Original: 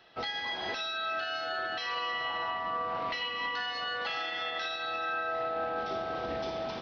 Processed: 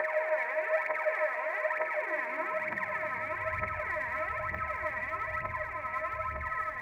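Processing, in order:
extreme stretch with random phases 32×, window 0.50 s, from 0:00.64
voice inversion scrambler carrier 2,600 Hz
phase shifter 1.1 Hz, delay 4.4 ms, feedback 66%
high-pass filter sweep 520 Hz → 78 Hz, 0:01.78–0:03.58

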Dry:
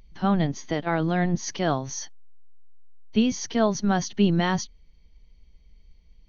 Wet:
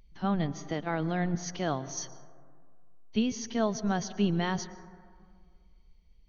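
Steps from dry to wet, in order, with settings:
0:01.97–0:03.19: high-shelf EQ 3,700 Hz +6 dB
dense smooth reverb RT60 2 s, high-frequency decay 0.25×, pre-delay 105 ms, DRR 15.5 dB
level −6.5 dB

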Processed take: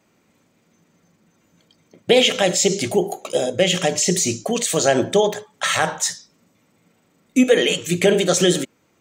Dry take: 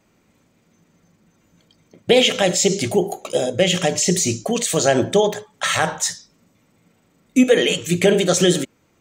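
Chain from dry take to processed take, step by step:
high-pass filter 140 Hz 6 dB per octave

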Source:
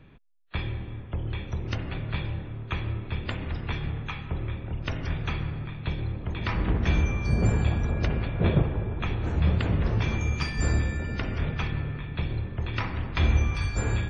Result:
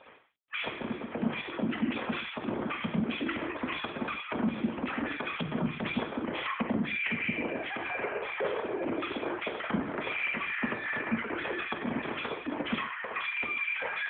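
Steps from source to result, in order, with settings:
three sine waves on the formant tracks
notch filter 2,800 Hz, Q 11
downward compressor 12 to 1, threshold −30 dBFS, peak gain reduction 15.5 dB
bit-depth reduction 12 bits, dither none
on a send at −2 dB: convolution reverb, pre-delay 3 ms
on the sum: AMR narrowband 7.95 kbit/s 8,000 Hz

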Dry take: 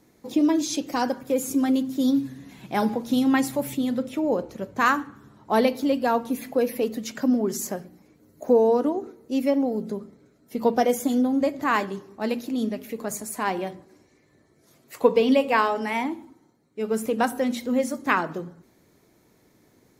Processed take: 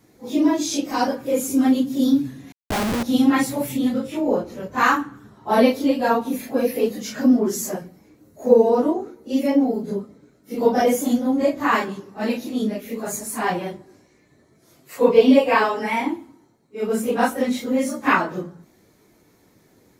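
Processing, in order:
random phases in long frames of 100 ms
0:02.52–0:03.03: comparator with hysteresis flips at −30.5 dBFS
level +3.5 dB

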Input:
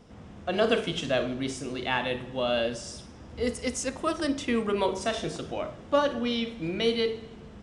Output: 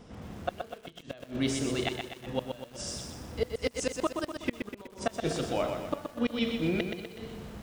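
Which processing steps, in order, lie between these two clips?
0:04.22–0:05.09: high-shelf EQ 2,800 Hz −6.5 dB
gate with flip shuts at −19 dBFS, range −28 dB
feedback echo at a low word length 124 ms, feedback 55%, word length 9 bits, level −5.5 dB
level +2.5 dB

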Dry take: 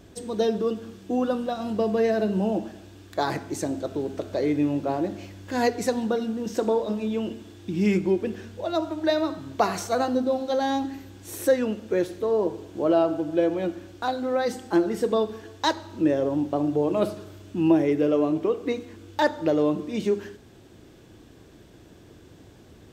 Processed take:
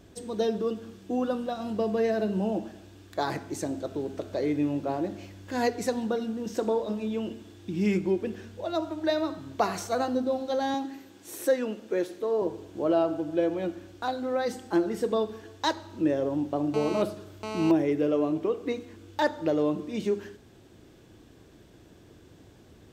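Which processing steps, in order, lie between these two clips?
0:10.74–0:12.42: high-pass filter 220 Hz 12 dB per octave
0:16.74–0:17.71: phone interference −31 dBFS
level −3.5 dB

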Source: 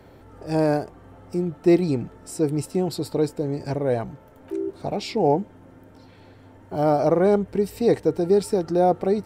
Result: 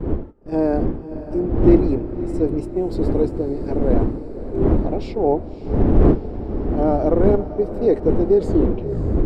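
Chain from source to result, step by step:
turntable brake at the end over 0.89 s
wind on the microphone 190 Hz −19 dBFS
RIAA equalisation playback
noise gate −15 dBFS, range −19 dB
in parallel at −9 dB: gain into a clipping stage and back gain 0 dB
on the sum: low shelf with overshoot 220 Hz −13 dB, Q 1.5
on a send: feedback delay with all-pass diffusion 575 ms, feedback 62%, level −13 dB
on the sum: level −6 dB

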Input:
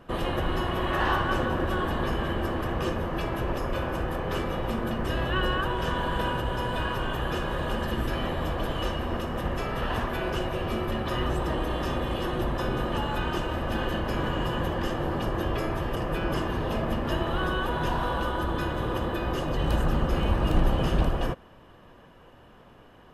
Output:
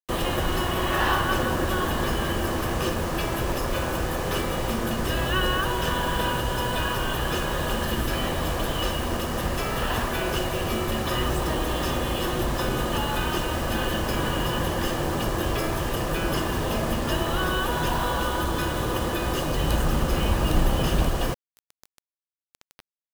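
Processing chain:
in parallel at −1.5 dB: downward compressor, threshold −36 dBFS, peak gain reduction 18 dB
on the sum: high-shelf EQ 3,400 Hz +9 dB
bit reduction 6 bits

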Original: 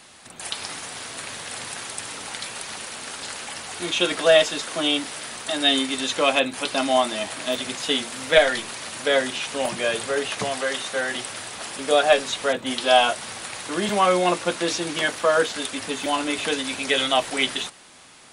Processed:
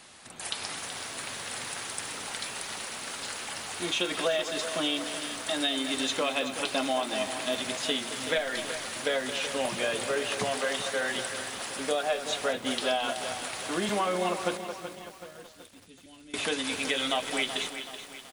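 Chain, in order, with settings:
0:14.57–0:16.34: guitar amp tone stack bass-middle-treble 10-0-1
downward compressor 16 to 1, threshold −21 dBFS, peak gain reduction 12.5 dB
far-end echo of a speakerphone 220 ms, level −10 dB
feedback echo at a low word length 378 ms, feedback 55%, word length 7 bits, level −10 dB
level −3.5 dB

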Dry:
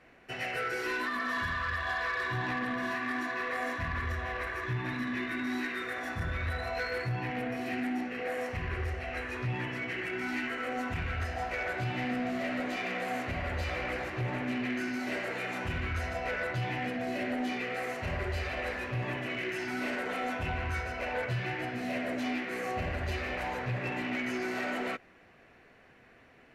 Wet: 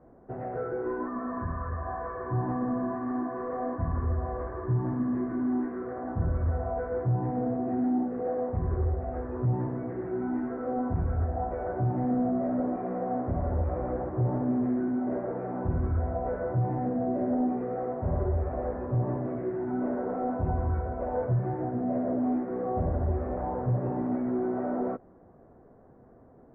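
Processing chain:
Bessel low-pass filter 660 Hz, order 6
level +7.5 dB

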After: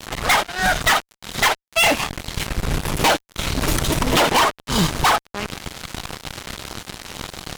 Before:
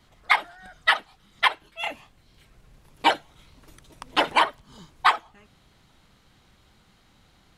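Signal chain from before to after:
downward compressor 4 to 1, threshold −37 dBFS, peak gain reduction 19.5 dB
fuzz pedal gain 52 dB, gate −55 dBFS

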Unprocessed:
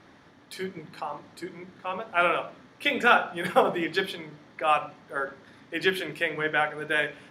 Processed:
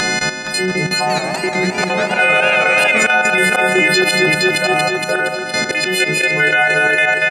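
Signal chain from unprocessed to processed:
every partial snapped to a pitch grid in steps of 3 semitones
low-pass filter 11,000 Hz 24 dB per octave
high-shelf EQ 4,300 Hz +6.5 dB
comb filter 5.3 ms, depth 80%
upward compression, threshold −27 dBFS
volume swells 206 ms
output level in coarse steps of 13 dB
echo machine with several playback heads 233 ms, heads first and second, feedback 56%, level −11 dB
boost into a limiter +25.5 dB
0:00.88–0:03.07: feedback echo with a swinging delay time 192 ms, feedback 33%, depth 218 cents, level −7.5 dB
level −3.5 dB

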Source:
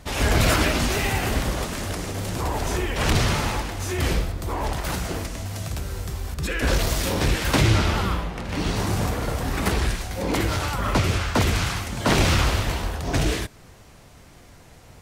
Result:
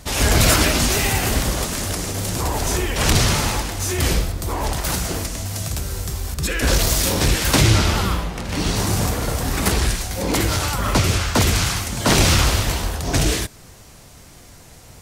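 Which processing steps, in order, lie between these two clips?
bass and treble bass +1 dB, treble +8 dB
level +2.5 dB

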